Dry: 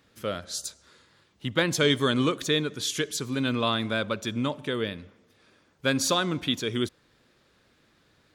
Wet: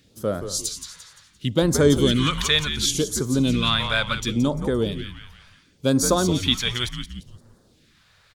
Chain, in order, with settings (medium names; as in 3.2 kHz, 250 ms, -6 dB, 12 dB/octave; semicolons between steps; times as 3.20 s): frequency-shifting echo 173 ms, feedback 40%, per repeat -88 Hz, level -9 dB; phase shifter stages 2, 0.7 Hz, lowest notch 280–2700 Hz; trim +7 dB